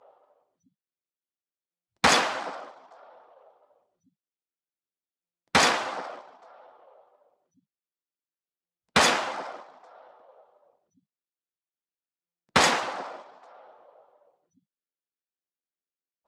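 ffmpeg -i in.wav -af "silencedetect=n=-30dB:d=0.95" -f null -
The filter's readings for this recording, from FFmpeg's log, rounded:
silence_start: 0.00
silence_end: 2.04 | silence_duration: 2.04
silence_start: 2.55
silence_end: 5.55 | silence_duration: 2.99
silence_start: 6.10
silence_end: 8.96 | silence_duration: 2.86
silence_start: 9.54
silence_end: 12.56 | silence_duration: 3.01
silence_start: 13.07
silence_end: 16.27 | silence_duration: 3.20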